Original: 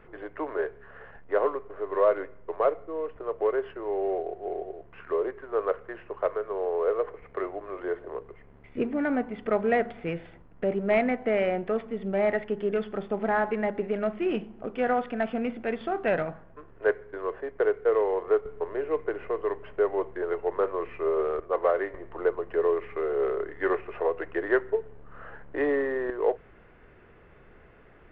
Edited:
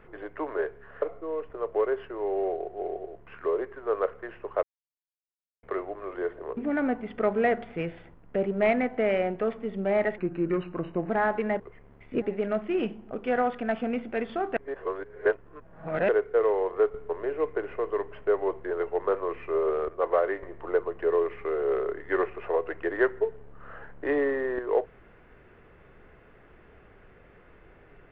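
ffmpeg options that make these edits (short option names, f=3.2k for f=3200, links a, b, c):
-filter_complex "[0:a]asplit=11[a][b][c][d][e][f][g][h][i][j][k];[a]atrim=end=1.022[l];[b]atrim=start=2.678:end=6.29,asetpts=PTS-STARTPTS,afade=t=out:st=3.608:d=0.004:c=hsin[m];[c]atrim=start=6.29:end=7.29,asetpts=PTS-STARTPTS,volume=0[n];[d]atrim=start=7.29:end=8.232,asetpts=PTS-STARTPTS,afade=t=in:d=0.004:c=hsin[o];[e]atrim=start=8.848:end=12.464[p];[f]atrim=start=12.46:end=13.23,asetpts=PTS-STARTPTS,asetrate=37044,aresample=44100[q];[g]atrim=start=13.226:end=13.732[r];[h]atrim=start=8.228:end=8.852[s];[i]atrim=start=13.728:end=16.082[t];[j]atrim=start=16.078:end=17.602,asetpts=PTS-STARTPTS,areverse[u];[k]atrim=start=17.598[v];[m][n][o]concat=n=3:v=0:a=1[w];[l][w]acrossfade=d=0.004:c1=hsin:c2=hsin[x];[x][p]acrossfade=d=0.004:c1=hsin:c2=hsin[y];[y][q]acrossfade=d=0.004:c1=hsin:c2=hsin[z];[z][r]acrossfade=d=0.004:c1=hsin:c2=hsin[aa];[aa][s]acrossfade=d=0.004:c1=hsin:c2=hsin[ab];[ab][t]acrossfade=d=0.004:c1=hsin:c2=hsin[ac];[ac][u]acrossfade=d=0.004:c1=hsin:c2=hsin[ad];[ad][v]acrossfade=d=0.004:c1=hsin:c2=hsin"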